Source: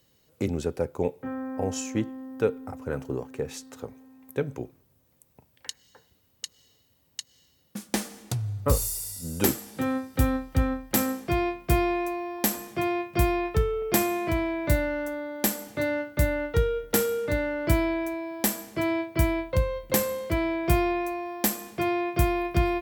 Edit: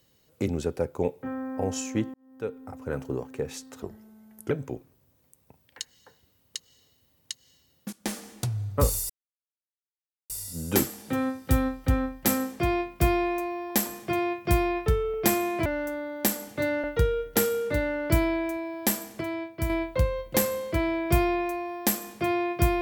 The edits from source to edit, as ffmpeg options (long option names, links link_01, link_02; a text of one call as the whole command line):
ffmpeg -i in.wav -filter_complex "[0:a]asplit=10[link_01][link_02][link_03][link_04][link_05][link_06][link_07][link_08][link_09][link_10];[link_01]atrim=end=2.14,asetpts=PTS-STARTPTS,afade=type=out:start_time=2.136:duration=0.004:curve=hsin[link_11];[link_02]atrim=start=2.14:end=3.824,asetpts=PTS-STARTPTS,afade=type=in:duration=0.82[link_12];[link_03]atrim=start=3.82:end=4.39,asetpts=PTS-STARTPTS,asetrate=36603,aresample=44100[link_13];[link_04]atrim=start=4.386:end=7.81,asetpts=PTS-STARTPTS,afade=type=out:start_time=3.42:duration=0.004:curve=hsin:silence=0.16788[link_14];[link_05]atrim=start=7.81:end=8.98,asetpts=PTS-STARTPTS,afade=type=in:duration=0.27:silence=0.16788,afade=type=out:start_time=1.166:duration=0.004:curve=hsin,apad=pad_dur=1.2[link_15];[link_06]atrim=start=8.98:end=14.342,asetpts=PTS-STARTPTS,afade=type=in:duration=0.004:curve=hsin[link_16];[link_07]atrim=start=14.848:end=16.032[link_17];[link_08]atrim=start=16.408:end=18.782[link_18];[link_09]atrim=start=18.778:end=19.272,asetpts=PTS-STARTPTS,volume=-6dB[link_19];[link_10]atrim=start=19.268[link_20];[link_11][link_12]concat=n=2:v=0:a=1[link_21];[link_21][link_13]acrossfade=duration=0.004:curve1=hsin:curve2=hsin[link_22];[link_14][link_15][link_16]concat=n=3:v=0:a=1[link_23];[link_22][link_23]acrossfade=duration=0.004:curve1=hsin:curve2=hsin[link_24];[link_24][link_17]acrossfade=duration=0.004:curve1=hsin:curve2=hsin[link_25];[link_25][link_18]acrossfade=duration=0.004:curve1=hsin:curve2=hsin[link_26];[link_26][link_19]acrossfade=duration=0.004:curve1=hsin:curve2=hsin[link_27];[link_27][link_20]acrossfade=duration=0.004:curve1=hsin:curve2=hsin" out.wav